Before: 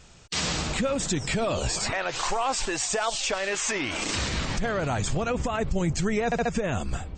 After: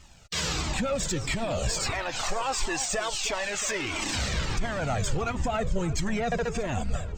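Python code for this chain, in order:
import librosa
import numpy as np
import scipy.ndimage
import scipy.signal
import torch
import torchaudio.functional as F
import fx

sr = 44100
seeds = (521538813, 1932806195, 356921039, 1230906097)

p1 = fx.leveller(x, sr, passes=1)
p2 = p1 + fx.echo_alternate(p1, sr, ms=315, hz=1300.0, feedback_pct=53, wet_db=-12.5, dry=0)
y = fx.comb_cascade(p2, sr, direction='falling', hz=1.5)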